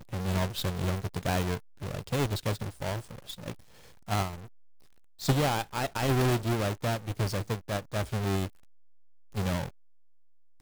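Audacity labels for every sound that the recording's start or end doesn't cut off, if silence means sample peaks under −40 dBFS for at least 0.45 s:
4.080000	4.360000	sound
5.210000	8.480000	sound
9.350000	9.690000	sound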